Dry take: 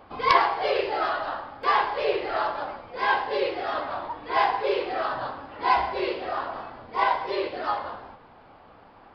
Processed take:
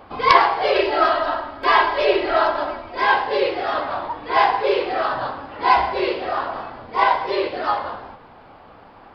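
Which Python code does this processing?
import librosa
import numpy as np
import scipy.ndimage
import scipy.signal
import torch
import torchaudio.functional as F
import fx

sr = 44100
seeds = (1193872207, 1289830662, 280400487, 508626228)

y = fx.comb(x, sr, ms=3.1, depth=0.87, at=(0.74, 3.03))
y = F.gain(torch.from_numpy(y), 6.0).numpy()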